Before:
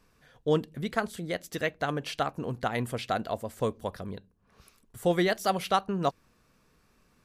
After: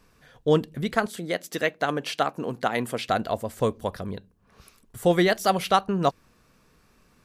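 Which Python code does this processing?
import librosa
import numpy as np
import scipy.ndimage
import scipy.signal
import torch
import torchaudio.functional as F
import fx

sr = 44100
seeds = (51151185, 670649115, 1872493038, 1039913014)

y = fx.highpass(x, sr, hz=190.0, slope=12, at=(1.06, 3.09))
y = y * 10.0 ** (5.0 / 20.0)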